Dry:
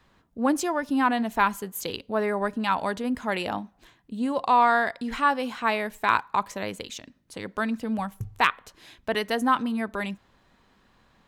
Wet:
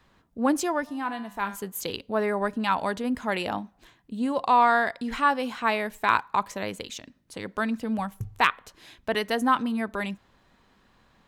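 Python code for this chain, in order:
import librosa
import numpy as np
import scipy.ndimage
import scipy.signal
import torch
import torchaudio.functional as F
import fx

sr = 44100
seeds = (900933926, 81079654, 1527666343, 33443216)

y = fx.comb_fb(x, sr, f0_hz=100.0, decay_s=0.68, harmonics='all', damping=0.0, mix_pct=70, at=(0.86, 1.54), fade=0.02)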